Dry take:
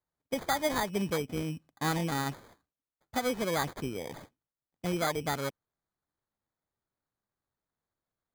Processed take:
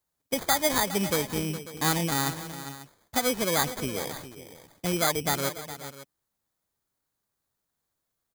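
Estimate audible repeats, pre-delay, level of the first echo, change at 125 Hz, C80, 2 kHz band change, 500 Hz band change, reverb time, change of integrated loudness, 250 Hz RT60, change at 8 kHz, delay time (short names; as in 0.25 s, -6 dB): 2, none, -13.5 dB, +3.5 dB, none, +5.0 dB, +3.5 dB, none, +5.5 dB, none, +11.5 dB, 0.412 s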